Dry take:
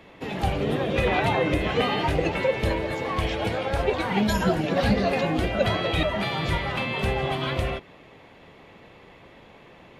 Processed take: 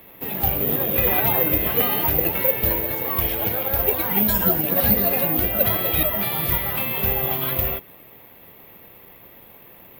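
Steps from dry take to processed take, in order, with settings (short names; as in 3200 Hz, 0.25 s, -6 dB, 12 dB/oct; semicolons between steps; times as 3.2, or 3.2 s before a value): careless resampling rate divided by 3×, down none, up zero stuff; gain -1.5 dB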